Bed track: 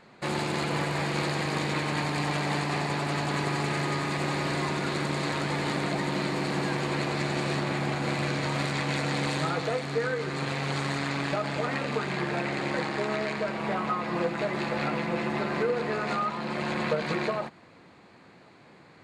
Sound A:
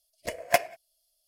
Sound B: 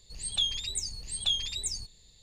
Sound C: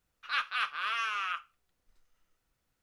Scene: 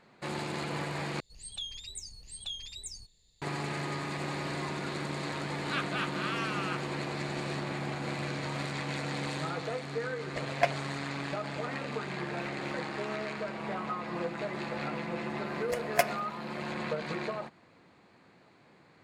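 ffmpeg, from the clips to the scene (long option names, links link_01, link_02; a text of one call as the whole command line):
ffmpeg -i bed.wav -i cue0.wav -i cue1.wav -i cue2.wav -filter_complex "[3:a]asplit=2[link_01][link_02];[1:a]asplit=2[link_03][link_04];[0:a]volume=-6.5dB[link_05];[2:a]alimiter=limit=-20dB:level=0:latency=1:release=157[link_06];[link_03]lowpass=3800[link_07];[link_02]aeval=exprs='clip(val(0),-1,0.0422)':channel_layout=same[link_08];[link_05]asplit=2[link_09][link_10];[link_09]atrim=end=1.204[link_11];[link_06]atrim=end=2.22,asetpts=PTS-STARTPTS,volume=-9dB[link_12];[link_10]atrim=start=3.416[link_13];[link_01]atrim=end=2.82,asetpts=PTS-STARTPTS,volume=-3.5dB,afade=type=in:duration=0.004:curve=hsin,afade=type=out:start_time=2.816:duration=0.004:curve=hsin,adelay=5400[link_14];[link_07]atrim=end=1.27,asetpts=PTS-STARTPTS,volume=-4dB,afade=type=in:duration=0.004:curve=hsin,afade=type=out:start_time=1.266:duration=0.004:curve=hsin,adelay=10090[link_15];[link_08]atrim=end=2.82,asetpts=PTS-STARTPTS,volume=-16.5dB,afade=type=in:duration=0.004:curve=hsin,afade=type=out:start_time=2.816:duration=0.004:curve=hsin,adelay=12080[link_16];[link_04]atrim=end=1.27,asetpts=PTS-STARTPTS,volume=-3.5dB,afade=type=in:duration=0.004:curve=hsin,afade=type=out:start_time=1.266:duration=0.004:curve=hsin,adelay=15450[link_17];[link_11][link_12]acrossfade=duration=0.004:curve1=hsin:curve2=hsin[link_18];[link_18][link_13]acrossfade=duration=0.004:curve1=hsin:curve2=hsin[link_19];[link_19][link_14][link_15][link_16][link_17]amix=inputs=5:normalize=0" out.wav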